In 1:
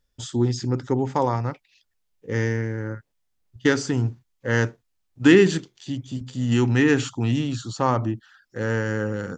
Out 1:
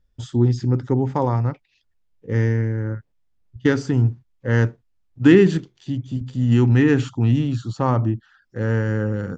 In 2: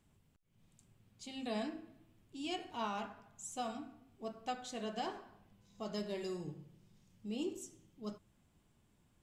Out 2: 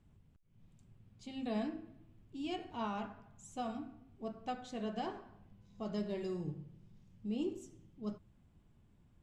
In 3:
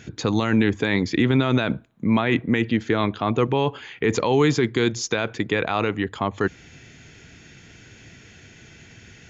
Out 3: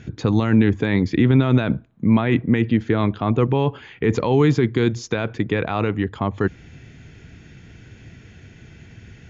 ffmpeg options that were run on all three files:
-af "lowpass=frequency=3000:poles=1,lowshelf=frequency=220:gain=9.5,volume=-1dB"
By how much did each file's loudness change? +3.0, +1.0, +2.5 LU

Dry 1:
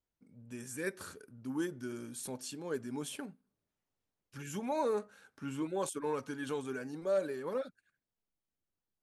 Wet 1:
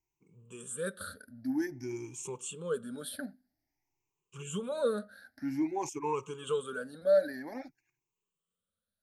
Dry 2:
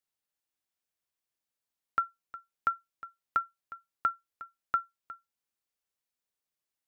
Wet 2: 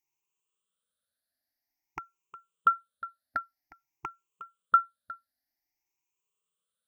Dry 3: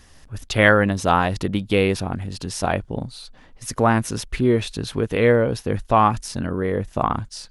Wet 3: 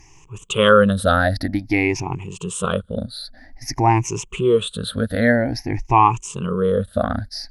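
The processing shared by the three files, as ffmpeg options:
-af "afftfilt=real='re*pow(10,23/40*sin(2*PI*(0.72*log(max(b,1)*sr/1024/100)/log(2)-(0.51)*(pts-256)/sr)))':imag='im*pow(10,23/40*sin(2*PI*(0.72*log(max(b,1)*sr/1024/100)/log(2)-(0.51)*(pts-256)/sr)))':win_size=1024:overlap=0.75,volume=-3.5dB"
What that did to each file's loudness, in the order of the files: +3.5, +5.5, +1.5 LU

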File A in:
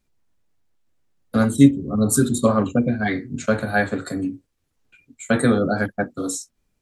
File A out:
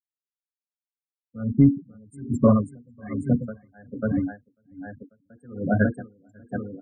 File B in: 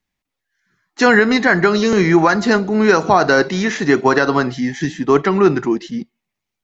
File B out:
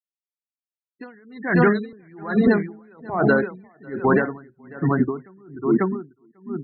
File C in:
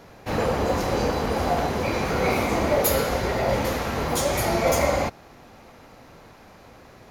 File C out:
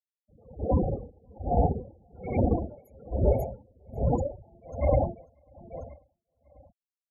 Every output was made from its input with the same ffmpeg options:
-filter_complex "[0:a]afftfilt=real='re*gte(hypot(re,im),0.224)':imag='im*gte(hypot(re,im),0.224)':win_size=1024:overlap=0.75,equalizer=frequency=4000:width_type=o:width=0.81:gain=-2.5,afftdn=noise_reduction=33:noise_floor=-40,lowshelf=frequency=200:gain=10.5,asplit=2[link_01][link_02];[link_02]adelay=543,lowpass=frequency=4900:poles=1,volume=-7dB,asplit=2[link_03][link_04];[link_04]adelay=543,lowpass=frequency=4900:poles=1,volume=0.25,asplit=2[link_05][link_06];[link_06]adelay=543,lowpass=frequency=4900:poles=1,volume=0.25[link_07];[link_03][link_05][link_07]amix=inputs=3:normalize=0[link_08];[link_01][link_08]amix=inputs=2:normalize=0,alimiter=limit=-7dB:level=0:latency=1:release=15,aeval=exprs='val(0)*pow(10,-36*(0.5-0.5*cos(2*PI*1.2*n/s))/20)':channel_layout=same"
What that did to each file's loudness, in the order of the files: −3.5, −7.0, −5.5 LU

